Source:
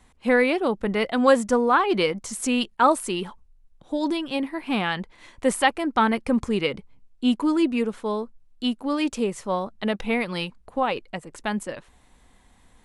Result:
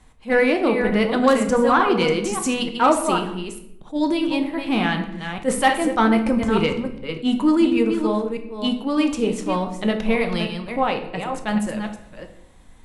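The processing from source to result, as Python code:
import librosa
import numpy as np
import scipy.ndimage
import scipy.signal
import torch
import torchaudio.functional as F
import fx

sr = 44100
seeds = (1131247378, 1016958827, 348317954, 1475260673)

y = fx.reverse_delay(x, sr, ms=299, wet_db=-7.5)
y = fx.low_shelf(y, sr, hz=190.0, db=4.5)
y = fx.cheby_harmonics(y, sr, harmonics=(3, 5, 7), levels_db=(-17, -18, -34), full_scale_db=-4.0)
y = fx.room_shoebox(y, sr, seeds[0], volume_m3=200.0, walls='mixed', distance_m=0.54)
y = fx.attack_slew(y, sr, db_per_s=330.0)
y = y * 10.0 ** (1.0 / 20.0)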